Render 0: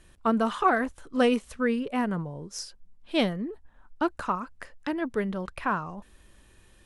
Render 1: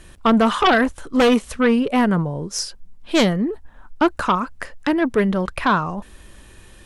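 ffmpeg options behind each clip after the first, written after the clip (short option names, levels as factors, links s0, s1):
-af "aeval=exprs='0.299*sin(PI/2*2.51*val(0)/0.299)':c=same"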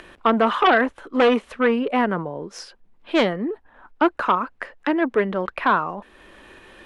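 -filter_complex "[0:a]acompressor=mode=upward:threshold=0.0316:ratio=2.5,acrossover=split=250 3400:gain=0.141 1 0.126[s0][s1][s2];[s0][s1][s2]amix=inputs=3:normalize=0"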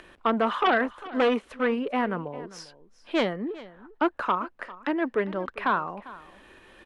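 -af "aecho=1:1:399:0.119,volume=0.501"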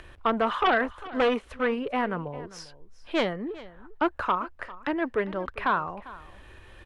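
-af "lowshelf=f=140:t=q:w=1.5:g=11.5"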